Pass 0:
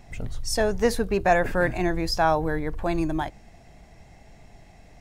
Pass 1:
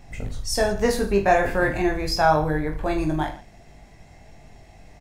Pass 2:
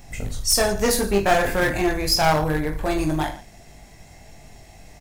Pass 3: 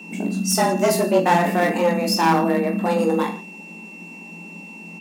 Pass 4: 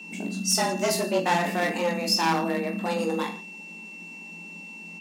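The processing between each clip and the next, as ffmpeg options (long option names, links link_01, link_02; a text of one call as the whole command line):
ffmpeg -i in.wav -af "aecho=1:1:20|45|76.25|115.3|164.1:0.631|0.398|0.251|0.158|0.1" out.wav
ffmpeg -i in.wav -af "aeval=exprs='clip(val(0),-1,0.0891)':channel_layout=same,crystalizer=i=2:c=0,volume=1.5dB" out.wav
ffmpeg -i in.wav -af "tiltshelf=frequency=940:gain=3.5,afreqshift=170,aeval=exprs='val(0)+0.0126*sin(2*PI*2700*n/s)':channel_layout=same" out.wav
ffmpeg -i in.wav -af "equalizer=frequency=4500:width_type=o:width=2.4:gain=8.5,volume=-8dB" out.wav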